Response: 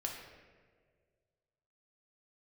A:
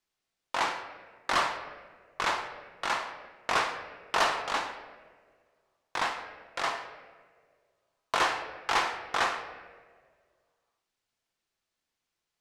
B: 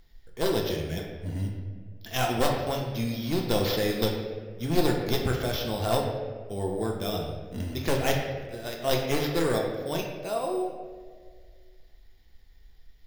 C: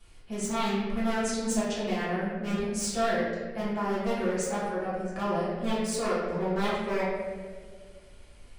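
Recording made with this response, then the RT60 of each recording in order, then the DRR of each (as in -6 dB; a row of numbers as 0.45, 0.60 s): B; 1.8, 1.8, 1.8 s; 5.5, -0.5, -10.0 dB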